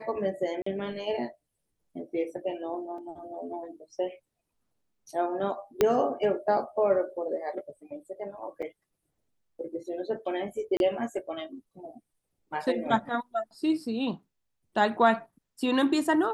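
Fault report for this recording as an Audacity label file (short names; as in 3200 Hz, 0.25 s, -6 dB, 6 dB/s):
0.620000	0.660000	gap 44 ms
2.980000	2.980000	gap 3 ms
5.810000	5.810000	pop -9 dBFS
8.620000	8.630000	gap 5.8 ms
10.770000	10.800000	gap 31 ms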